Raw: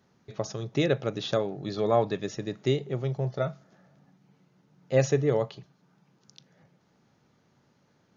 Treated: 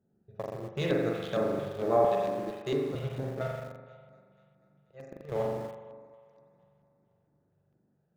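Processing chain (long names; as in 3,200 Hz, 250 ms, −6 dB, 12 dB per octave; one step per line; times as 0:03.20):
adaptive Wiener filter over 41 samples
0:03.47–0:05.32: volume swells 652 ms
mains-hum notches 60/120/180/240/300 Hz
0:01.96–0:02.95: high-pass filter 160 Hz 12 dB per octave
on a send: feedback echo with a high-pass in the loop 243 ms, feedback 63%, high-pass 260 Hz, level −15.5 dB
on the sum: spring reverb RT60 1.5 s, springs 41 ms, chirp 65 ms, DRR −2.5 dB
auto-filter notch square 2.2 Hz 280–3,100 Hz
in parallel at −9 dB: centre clipping without the shift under −31 dBFS
on the sum: level −7 dB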